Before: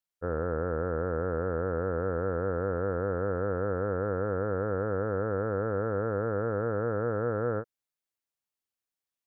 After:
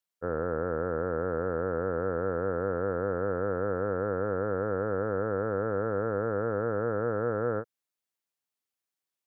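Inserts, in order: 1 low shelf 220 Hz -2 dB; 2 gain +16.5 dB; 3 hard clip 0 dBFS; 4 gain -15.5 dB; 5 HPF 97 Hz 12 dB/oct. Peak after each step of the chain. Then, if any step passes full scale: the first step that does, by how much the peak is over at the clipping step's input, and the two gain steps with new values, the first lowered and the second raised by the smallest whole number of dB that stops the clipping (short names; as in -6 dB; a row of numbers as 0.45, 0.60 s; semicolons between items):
-19.0, -2.5, -2.5, -18.0, -17.5 dBFS; no overload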